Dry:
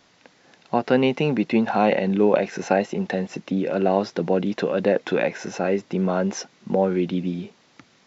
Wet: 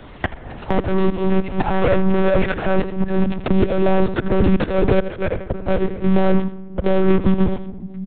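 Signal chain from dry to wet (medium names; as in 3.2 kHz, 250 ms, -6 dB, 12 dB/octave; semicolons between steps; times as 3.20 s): Doppler pass-by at 1.84 s, 14 m/s, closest 10 m; tilt EQ -3 dB/octave; waveshaping leveller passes 5; compressor with a negative ratio -13 dBFS, ratio -1; flange 0.43 Hz, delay 1.3 ms, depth 8.4 ms, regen -90%; slow attack 357 ms; delay 84 ms -14 dB; simulated room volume 2900 m³, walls furnished, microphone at 0.58 m; monotone LPC vocoder at 8 kHz 190 Hz; three bands compressed up and down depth 100%; trim +6 dB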